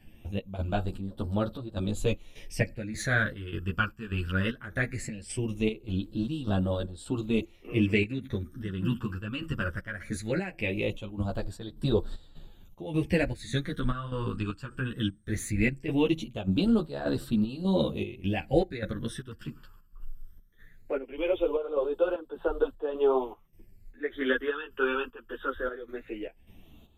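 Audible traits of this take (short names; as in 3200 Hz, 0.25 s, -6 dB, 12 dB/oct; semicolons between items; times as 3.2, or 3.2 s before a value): phasing stages 12, 0.19 Hz, lowest notch 670–2200 Hz; chopped level 1.7 Hz, depth 65%, duty 65%; a shimmering, thickened sound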